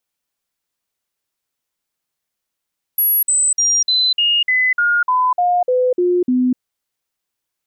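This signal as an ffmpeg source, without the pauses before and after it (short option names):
-f lavfi -i "aevalsrc='0.251*clip(min(mod(t,0.3),0.25-mod(t,0.3))/0.005,0,1)*sin(2*PI*11400*pow(2,-floor(t/0.3)/2)*mod(t,0.3))':d=3.6:s=44100"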